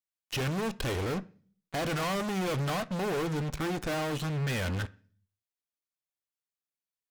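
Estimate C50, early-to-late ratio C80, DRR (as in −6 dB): 21.5 dB, 26.0 dB, 11.0 dB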